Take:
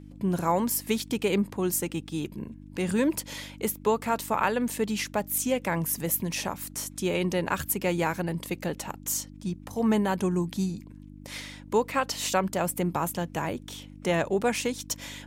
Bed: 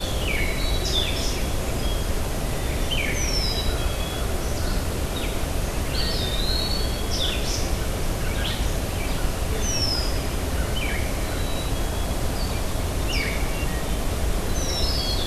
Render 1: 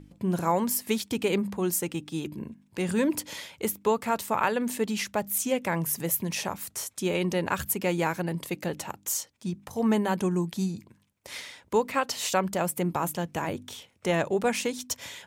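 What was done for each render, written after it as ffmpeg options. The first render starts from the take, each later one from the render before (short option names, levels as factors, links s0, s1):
-af "bandreject=f=50:t=h:w=4,bandreject=f=100:t=h:w=4,bandreject=f=150:t=h:w=4,bandreject=f=200:t=h:w=4,bandreject=f=250:t=h:w=4,bandreject=f=300:t=h:w=4"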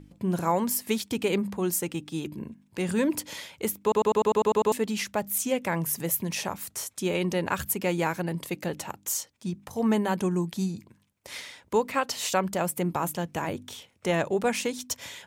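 -filter_complex "[0:a]asplit=10[s0][s1][s2][s3][s4][s5][s6][s7][s8][s9];[s0]atrim=end=3.922[s10];[s1]atrim=start=3.818:end=3.922[s11];[s2]atrim=start=3.818:end=3.922[s12];[s3]atrim=start=3.818:end=3.922[s13];[s4]atrim=start=3.818:end=3.922[s14];[s5]atrim=start=3.818:end=3.922[s15];[s6]atrim=start=3.818:end=3.922[s16];[s7]atrim=start=3.818:end=3.922[s17];[s8]atrim=start=3.818:end=3.922[s18];[s9]atrim=start=4.718[s19];[s10][s11]acrossfade=d=0.004:c1=hsin:c2=hsin[s20];[s20][s12]acrossfade=d=0.004:c1=hsin:c2=hsin[s21];[s21][s13]acrossfade=d=0.004:c1=hsin:c2=hsin[s22];[s22][s14]acrossfade=d=0.004:c1=hsin:c2=hsin[s23];[s23][s15]acrossfade=d=0.004:c1=hsin:c2=hsin[s24];[s24][s16]acrossfade=d=0.004:c1=hsin:c2=hsin[s25];[s25][s17]acrossfade=d=0.004:c1=hsin:c2=hsin[s26];[s26][s18]acrossfade=d=0.004:c1=hsin:c2=hsin[s27];[s27][s19]acrossfade=d=0.004:c1=hsin:c2=hsin"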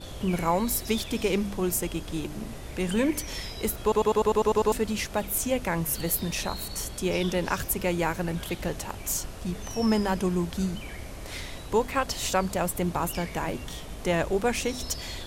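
-filter_complex "[1:a]volume=0.2[s0];[0:a][s0]amix=inputs=2:normalize=0"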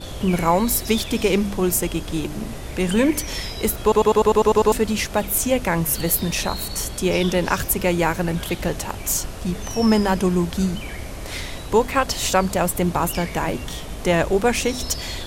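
-af "volume=2.24"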